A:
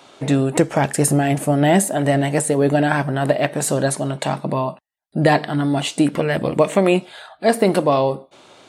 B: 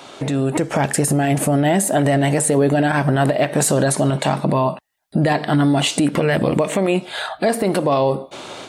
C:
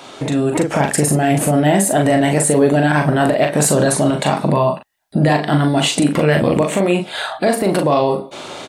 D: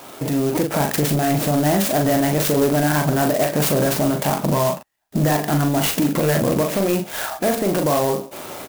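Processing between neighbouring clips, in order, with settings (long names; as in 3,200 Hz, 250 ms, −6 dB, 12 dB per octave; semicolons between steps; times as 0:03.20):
downward compressor 6 to 1, threshold −25 dBFS, peak gain reduction 14.5 dB; brickwall limiter −21.5 dBFS, peak gain reduction 9 dB; automatic gain control gain up to 6 dB; level +7.5 dB
double-tracking delay 40 ms −5 dB; level +1.5 dB
soft clipping −9 dBFS, distortion −17 dB; converter with an unsteady clock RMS 0.067 ms; level −2 dB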